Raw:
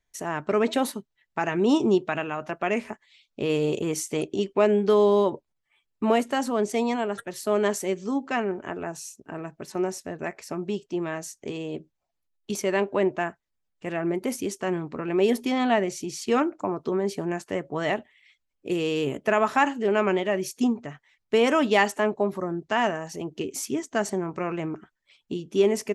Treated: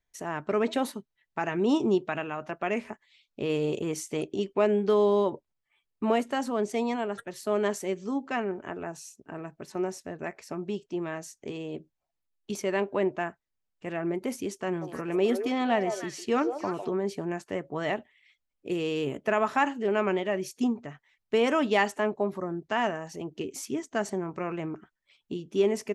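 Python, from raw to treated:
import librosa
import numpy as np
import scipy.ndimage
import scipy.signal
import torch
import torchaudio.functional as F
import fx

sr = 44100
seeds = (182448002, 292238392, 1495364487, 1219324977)

y = fx.high_shelf(x, sr, hz=6400.0, db=-5.0)
y = fx.echo_stepped(y, sr, ms=152, hz=590.0, octaves=1.4, feedback_pct=70, wet_db=-4.5, at=(14.81, 16.9), fade=0.02)
y = y * 10.0 ** (-3.5 / 20.0)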